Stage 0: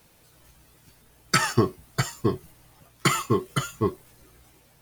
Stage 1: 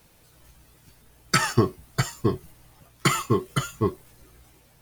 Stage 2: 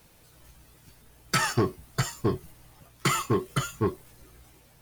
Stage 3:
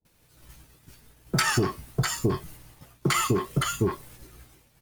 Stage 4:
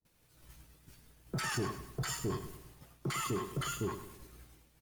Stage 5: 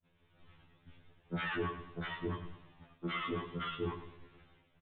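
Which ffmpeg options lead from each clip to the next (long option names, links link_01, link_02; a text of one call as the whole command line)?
ffmpeg -i in.wav -af "lowshelf=frequency=79:gain=5.5" out.wav
ffmpeg -i in.wav -af "asoftclip=type=tanh:threshold=-17dB" out.wav
ffmpeg -i in.wav -filter_complex "[0:a]acrossover=split=720[link_01][link_02];[link_02]adelay=50[link_03];[link_01][link_03]amix=inputs=2:normalize=0,agate=range=-33dB:threshold=-49dB:ratio=3:detection=peak,acompressor=threshold=-26dB:ratio=6,volume=6dB" out.wav
ffmpeg -i in.wav -af "alimiter=limit=-21dB:level=0:latency=1:release=29,aecho=1:1:102|204|306|408|510:0.266|0.12|0.0539|0.0242|0.0109,volume=-7dB" out.wav
ffmpeg -i in.wav -af "aresample=8000,aresample=44100,afftfilt=real='re*2*eq(mod(b,4),0)':imag='im*2*eq(mod(b,4),0)':win_size=2048:overlap=0.75,volume=2.5dB" out.wav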